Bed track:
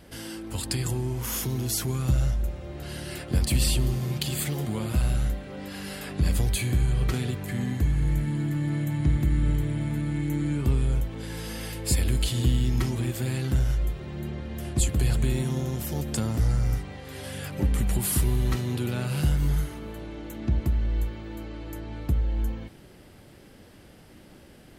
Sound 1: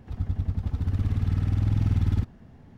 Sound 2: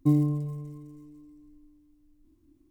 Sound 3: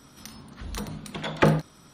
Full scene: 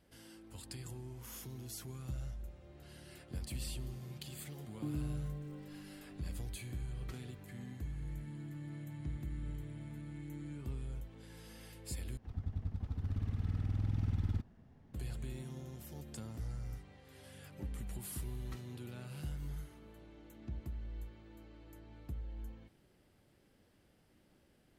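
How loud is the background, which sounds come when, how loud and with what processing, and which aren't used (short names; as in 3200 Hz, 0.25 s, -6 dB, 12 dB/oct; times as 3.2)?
bed track -18.5 dB
4.77 add 2 -4 dB + compressor 3:1, threshold -37 dBFS
12.17 replace with 1 -11.5 dB
not used: 3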